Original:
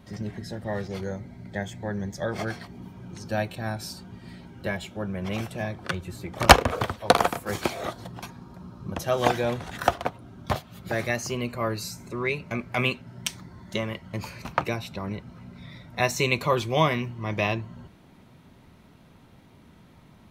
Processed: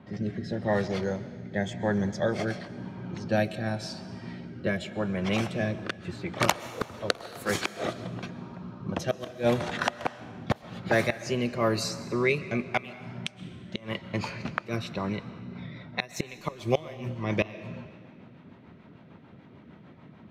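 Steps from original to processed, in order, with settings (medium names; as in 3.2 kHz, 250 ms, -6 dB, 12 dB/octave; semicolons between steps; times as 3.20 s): high-pass 120 Hz 12 dB/octave; level-controlled noise filter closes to 2.3 kHz, open at -23.5 dBFS; inverted gate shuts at -14 dBFS, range -25 dB; rotary cabinet horn 0.9 Hz, later 6.7 Hz, at 15.10 s; on a send: reverberation RT60 1.8 s, pre-delay 90 ms, DRR 14.5 dB; on the sum: trim +5.5 dB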